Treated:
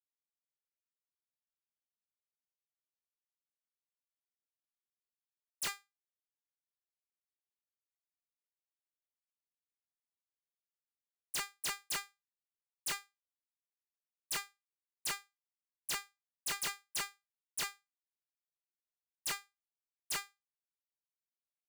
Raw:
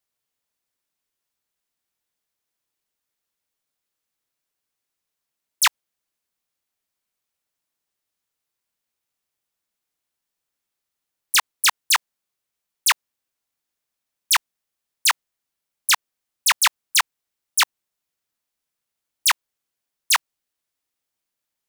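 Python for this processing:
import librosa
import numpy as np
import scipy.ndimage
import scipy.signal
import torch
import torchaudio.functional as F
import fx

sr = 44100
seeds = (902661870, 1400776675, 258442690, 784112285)

y = fx.comb_fb(x, sr, f0_hz=400.0, decay_s=0.3, harmonics='all', damping=0.0, mix_pct=90)
y = fx.power_curve(y, sr, exponent=1.4)
y = 10.0 ** (-31.0 / 20.0) * (np.abs((y / 10.0 ** (-31.0 / 20.0) + 3.0) % 4.0 - 2.0) - 1.0)
y = y * 10.0 ** (1.5 / 20.0)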